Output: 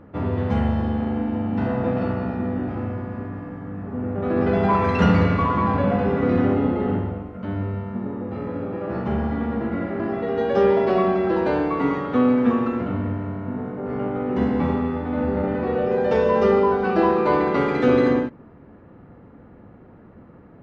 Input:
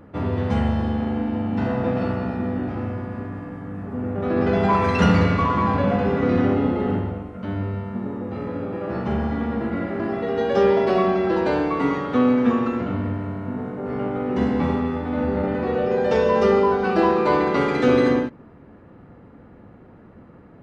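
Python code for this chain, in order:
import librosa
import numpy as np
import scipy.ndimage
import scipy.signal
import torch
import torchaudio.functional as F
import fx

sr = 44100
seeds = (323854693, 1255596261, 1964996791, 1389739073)

y = fx.high_shelf(x, sr, hz=4600.0, db=-11.5)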